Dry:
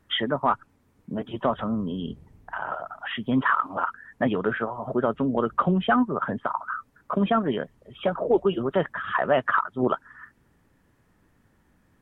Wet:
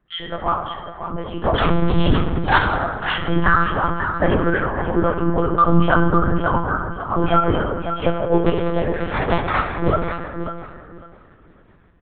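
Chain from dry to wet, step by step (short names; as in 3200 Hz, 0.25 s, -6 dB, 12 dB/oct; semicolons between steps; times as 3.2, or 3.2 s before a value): 8.46–9.7 cycle switcher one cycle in 2, muted; chorus voices 2, 0.35 Hz, delay 16 ms, depth 1 ms; 1.54–2.58 sample leveller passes 5; AGC gain up to 15 dB; in parallel at -11 dB: hard clip -9.5 dBFS, distortion -14 dB; on the sum: reverb removal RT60 0.51 s; on a send: feedback echo 0.548 s, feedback 19%, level -9.5 dB; on the sum: plate-style reverb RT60 1.7 s, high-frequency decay 0.55×, DRR 2.5 dB; monotone LPC vocoder at 8 kHz 170 Hz; gain -5 dB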